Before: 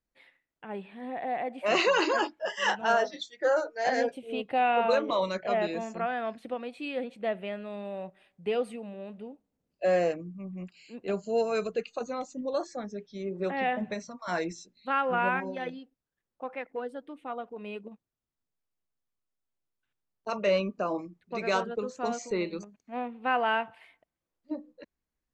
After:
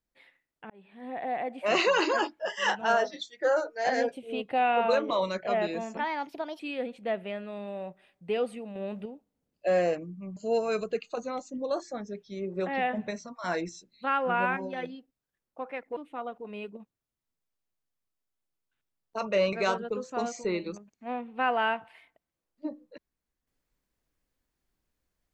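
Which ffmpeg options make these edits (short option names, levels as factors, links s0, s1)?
-filter_complex "[0:a]asplit=9[s0][s1][s2][s3][s4][s5][s6][s7][s8];[s0]atrim=end=0.7,asetpts=PTS-STARTPTS,afade=t=out:st=0.696:d=0.004:c=hsin[s9];[s1]atrim=start=0.7:end=5.974,asetpts=PTS-STARTPTS,afade=t=in:d=0.47[s10];[s2]atrim=start=5.97:end=6.77,asetpts=PTS-STARTPTS,asetrate=56448,aresample=44100,atrim=end_sample=27562,asetpts=PTS-STARTPTS[s11];[s3]atrim=start=6.766:end=8.932[s12];[s4]atrim=start=8.928:end=9.232,asetpts=PTS-STARTPTS,volume=2[s13];[s5]atrim=start=9.228:end=10.542[s14];[s6]atrim=start=11.198:end=16.802[s15];[s7]atrim=start=17.078:end=20.642[s16];[s8]atrim=start=21.388[s17];[s9][s10]concat=n=2:v=0:a=1[s18];[s18][s11]acrossfade=d=0.004:c1=hsin:c2=hsin[s19];[s19][s12]acrossfade=d=0.004:c1=hsin:c2=hsin[s20];[s20][s13]acrossfade=d=0.004:c1=hsin:c2=hsin[s21];[s21][s14]acrossfade=d=0.004:c1=hsin:c2=hsin[s22];[s22][s15]acrossfade=d=0.004:c1=hsin:c2=hsin[s23];[s23][s16]acrossfade=d=0.004:c1=hsin:c2=hsin[s24];[s24][s17]acrossfade=d=0.004:c1=hsin:c2=hsin"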